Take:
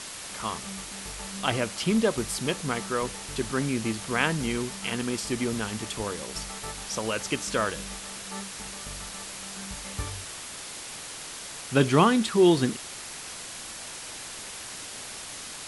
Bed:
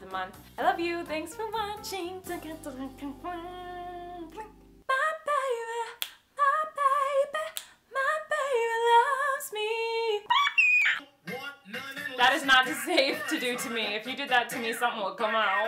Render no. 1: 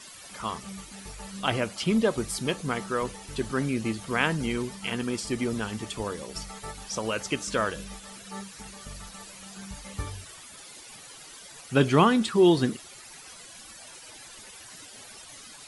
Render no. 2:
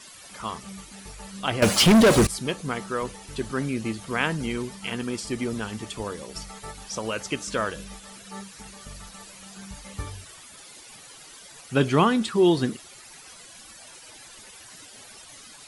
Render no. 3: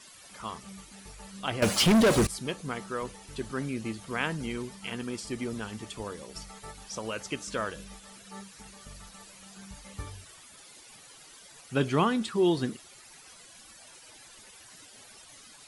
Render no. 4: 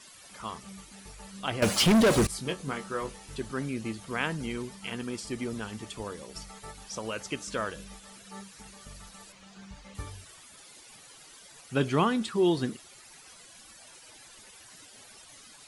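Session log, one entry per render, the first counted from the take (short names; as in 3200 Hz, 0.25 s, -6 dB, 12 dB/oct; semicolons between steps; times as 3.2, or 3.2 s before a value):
denoiser 13 dB, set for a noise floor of -40 dBFS
1.62–2.27 sample leveller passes 5
gain -5.5 dB
2.27–3.36 doubler 22 ms -6 dB; 9.32–9.95 air absorption 82 m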